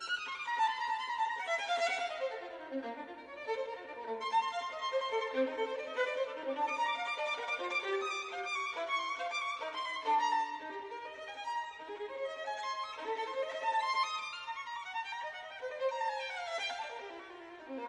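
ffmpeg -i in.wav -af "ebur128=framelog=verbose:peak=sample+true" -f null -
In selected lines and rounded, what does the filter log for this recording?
Integrated loudness:
  I:         -36.4 LUFS
  Threshold: -46.5 LUFS
Loudness range:
  LRA:         3.5 LU
  Threshold: -56.5 LUFS
  LRA low:   -38.6 LUFS
  LRA high:  -35.1 LUFS
Sample peak:
  Peak:      -21.0 dBFS
True peak:
  Peak:      -21.0 dBFS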